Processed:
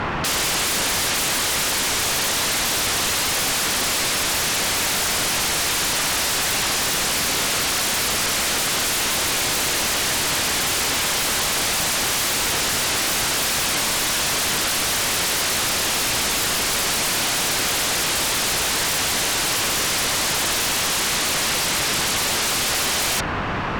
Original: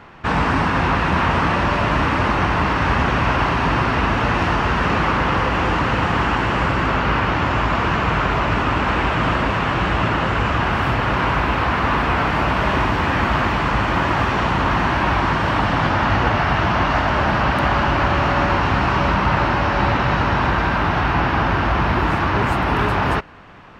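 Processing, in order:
brickwall limiter −14.5 dBFS, peak gain reduction 10.5 dB
sine wavefolder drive 20 dB, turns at −14.5 dBFS
level −4 dB

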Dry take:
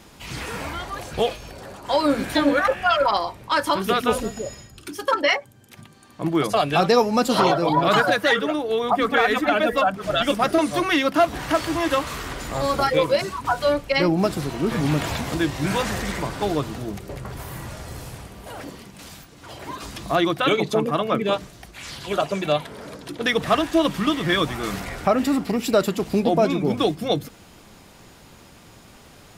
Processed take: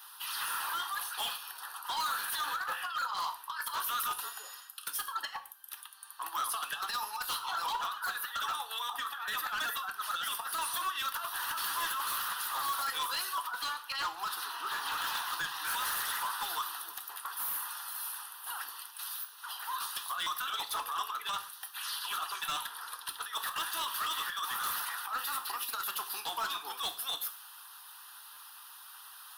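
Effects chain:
high-pass filter 870 Hz 24 dB per octave
high shelf with overshoot 7,100 Hz +10 dB, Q 1.5
harmonic and percussive parts rebalanced harmonic −8 dB
0:13.46–0:15.65: parametric band 12,000 Hz −8.5 dB 1.1 octaves
compressor whose output falls as the input rises −30 dBFS, ratio −0.5
phaser with its sweep stopped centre 2,200 Hz, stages 6
hard clipping −33 dBFS, distortion −9 dB
reverb whose tail is shaped and stops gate 170 ms falling, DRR 8 dB
buffer that repeats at 0:20.23/0:28.33, samples 512, times 2
level +1.5 dB

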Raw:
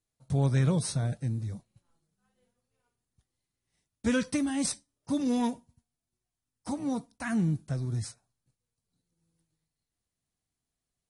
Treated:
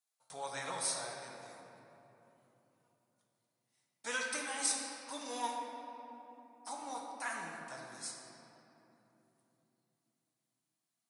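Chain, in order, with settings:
high-pass with resonance 860 Hz, resonance Q 1.6
high-shelf EQ 4,100 Hz +7 dB
rectangular room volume 170 cubic metres, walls hard, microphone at 0.5 metres
level −6.5 dB

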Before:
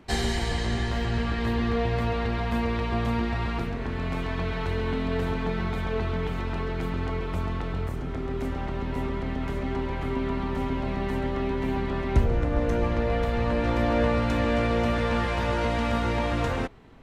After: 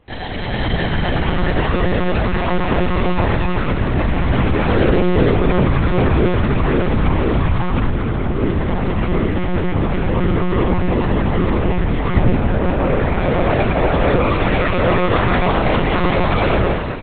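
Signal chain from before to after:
automatic gain control gain up to 9 dB
multi-tap delay 59/91/114/268/859 ms −18/−3.5/−3.5/−3.5/−8 dB
one-pitch LPC vocoder at 8 kHz 180 Hz
level −2 dB

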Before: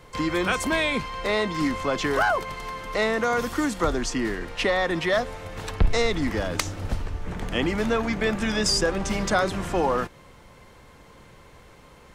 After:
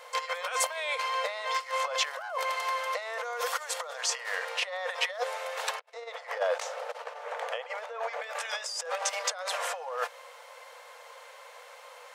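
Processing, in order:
compressor whose output falls as the input rises −28 dBFS, ratio −0.5
linear-phase brick-wall high-pass 460 Hz
0:05.94–0:08.22: spectral tilt −3 dB per octave

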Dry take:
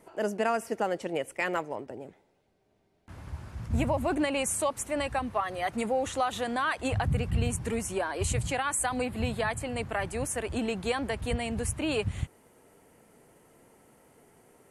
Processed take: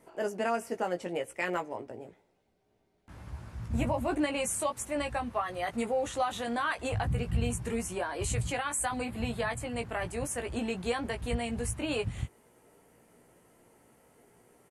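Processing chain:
double-tracking delay 17 ms −5.5 dB
level −3.5 dB

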